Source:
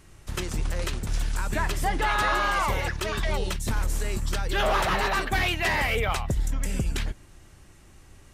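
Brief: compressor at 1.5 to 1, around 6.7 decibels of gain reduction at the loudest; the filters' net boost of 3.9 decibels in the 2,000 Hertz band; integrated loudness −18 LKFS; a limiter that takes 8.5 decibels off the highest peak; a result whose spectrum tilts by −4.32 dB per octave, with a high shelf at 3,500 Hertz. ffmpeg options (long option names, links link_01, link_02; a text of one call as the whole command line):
ffmpeg -i in.wav -af "equalizer=frequency=2000:width_type=o:gain=6,highshelf=frequency=3500:gain=-4.5,acompressor=threshold=-38dB:ratio=1.5,volume=18dB,alimiter=limit=-9dB:level=0:latency=1" out.wav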